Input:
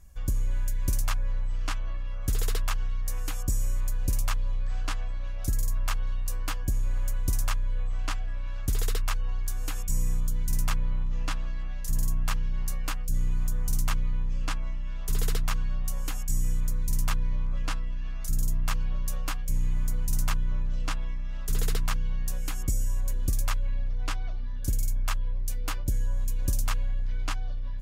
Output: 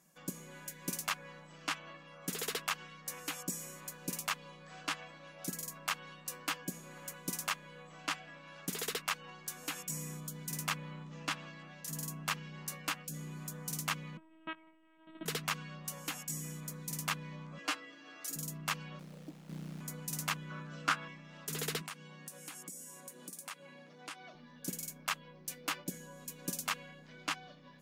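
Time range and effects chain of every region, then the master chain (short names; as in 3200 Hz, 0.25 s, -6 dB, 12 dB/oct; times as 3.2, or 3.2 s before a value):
14.17–15.26 air absorption 400 m + LPC vocoder at 8 kHz pitch kept
17.58–18.36 steep high-pass 260 Hz + notch 3600 Hz, Q 19 + comb 6.6 ms, depth 71%
18.99–19.81 inverse Chebyshev low-pass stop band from 2700 Hz, stop band 80 dB + short-mantissa float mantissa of 4-bit + Doppler distortion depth 0.7 ms
20.5–21.08 bell 1400 Hz +11.5 dB 0.5 oct + doubler 18 ms -10 dB
21.81–24.35 HPF 190 Hz + bell 9300 Hz +7.5 dB 0.42 oct + compressor 2.5:1, threshold -44 dBFS
whole clip: elliptic high-pass 160 Hz, stop band 40 dB; dynamic EQ 2500 Hz, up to +5 dB, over -53 dBFS, Q 0.96; gain -2 dB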